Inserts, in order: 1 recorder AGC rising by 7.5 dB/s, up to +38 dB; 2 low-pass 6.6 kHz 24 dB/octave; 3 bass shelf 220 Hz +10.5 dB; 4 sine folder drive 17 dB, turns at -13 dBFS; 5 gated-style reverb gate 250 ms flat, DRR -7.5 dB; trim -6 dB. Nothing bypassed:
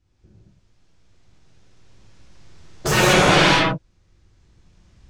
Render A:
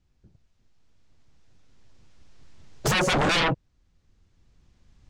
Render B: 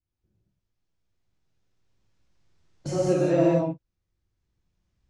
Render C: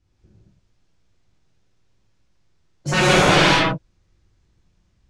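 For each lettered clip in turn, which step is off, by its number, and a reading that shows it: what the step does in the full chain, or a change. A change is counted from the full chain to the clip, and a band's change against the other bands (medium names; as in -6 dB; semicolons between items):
5, momentary loudness spread change -5 LU; 4, 4 kHz band -16.0 dB; 1, momentary loudness spread change +2 LU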